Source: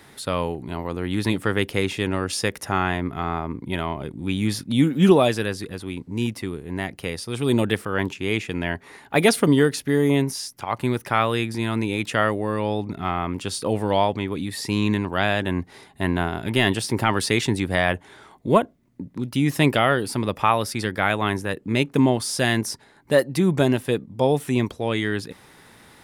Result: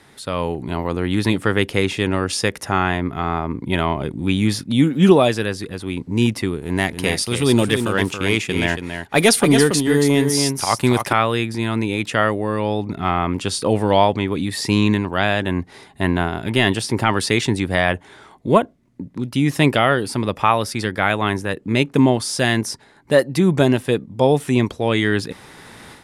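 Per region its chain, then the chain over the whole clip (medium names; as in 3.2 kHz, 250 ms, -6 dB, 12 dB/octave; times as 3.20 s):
6.62–11.13 s: treble shelf 4.1 kHz +9 dB + waveshaping leveller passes 1 + delay 278 ms -6.5 dB
whole clip: level rider gain up to 11.5 dB; low-pass 11 kHz 12 dB/octave; trim -1 dB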